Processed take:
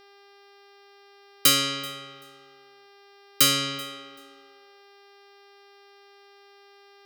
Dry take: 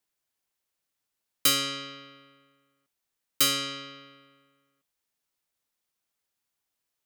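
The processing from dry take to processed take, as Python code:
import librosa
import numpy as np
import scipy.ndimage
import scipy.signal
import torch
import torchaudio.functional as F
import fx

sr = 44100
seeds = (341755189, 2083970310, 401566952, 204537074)

p1 = fx.filter_sweep_highpass(x, sr, from_hz=69.0, to_hz=2200.0, start_s=3.09, end_s=6.24, q=1.8)
p2 = p1 + fx.echo_feedback(p1, sr, ms=384, feedback_pct=18, wet_db=-22.5, dry=0)
p3 = fx.dmg_buzz(p2, sr, base_hz=400.0, harmonics=14, level_db=-58.0, tilt_db=-4, odd_only=False)
y = F.gain(torch.from_numpy(p3), 4.0).numpy()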